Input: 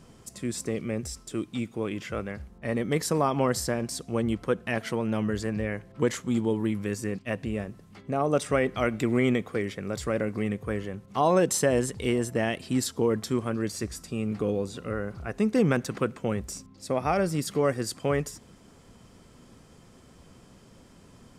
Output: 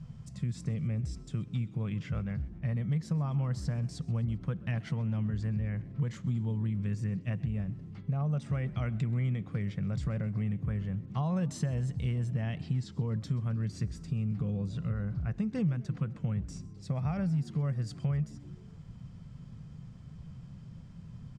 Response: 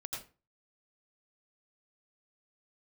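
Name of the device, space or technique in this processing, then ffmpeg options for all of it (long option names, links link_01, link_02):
jukebox: -filter_complex "[0:a]lowpass=5600,lowshelf=frequency=220:width_type=q:width=3:gain=13,acompressor=threshold=-22dB:ratio=4,asettb=1/sr,asplit=3[link_01][link_02][link_03];[link_01]atrim=end=12.334[link_04];[link_02]atrim=start=12.33:end=12.92,asetpts=PTS-STARTPTS,afade=type=in:duration=0.004:curve=qsin,afade=type=out:start_time=0.586:duration=0.004:curve=qsin,lowpass=7100[link_05];[link_03]atrim=start=12.916[link_06];[link_04][link_05]acrossfade=duration=0.004:curve1=hsin:curve2=qsin[link_07];[link_07][link_06]acrossfade=duration=0.004:curve1=qsin:curve2=hsin,asplit=5[link_08][link_09][link_10][link_11][link_12];[link_09]adelay=130,afreqshift=73,volume=-22dB[link_13];[link_10]adelay=260,afreqshift=146,volume=-27.7dB[link_14];[link_11]adelay=390,afreqshift=219,volume=-33.4dB[link_15];[link_12]adelay=520,afreqshift=292,volume=-39dB[link_16];[link_08][link_13][link_14][link_15][link_16]amix=inputs=5:normalize=0,volume=-7.5dB"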